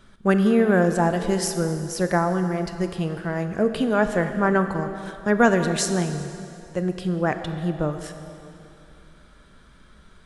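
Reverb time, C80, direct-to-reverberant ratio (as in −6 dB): 2.9 s, 9.0 dB, 8.0 dB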